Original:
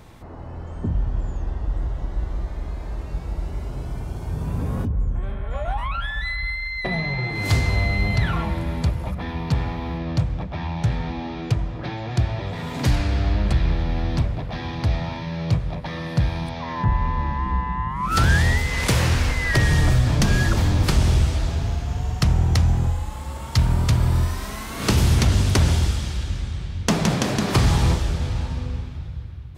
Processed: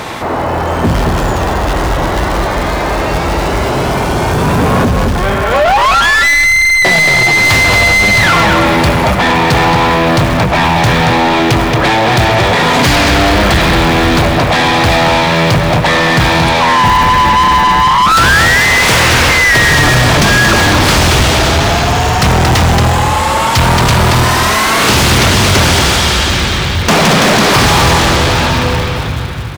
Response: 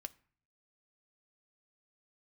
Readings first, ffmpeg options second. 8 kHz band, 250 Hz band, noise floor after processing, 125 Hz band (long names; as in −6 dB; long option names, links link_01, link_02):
+17.5 dB, +13.5 dB, −14 dBFS, +7.5 dB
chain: -filter_complex "[0:a]acrusher=bits=8:mode=log:mix=0:aa=0.000001,asplit=2[link_01][link_02];[link_02]adelay=227.4,volume=-7dB,highshelf=frequency=4000:gain=-5.12[link_03];[link_01][link_03]amix=inputs=2:normalize=0,asplit=2[link_04][link_05];[link_05]highpass=frequency=720:poles=1,volume=34dB,asoftclip=type=tanh:threshold=-5.5dB[link_06];[link_04][link_06]amix=inputs=2:normalize=0,lowpass=frequency=4300:poles=1,volume=-6dB,volume=4.5dB"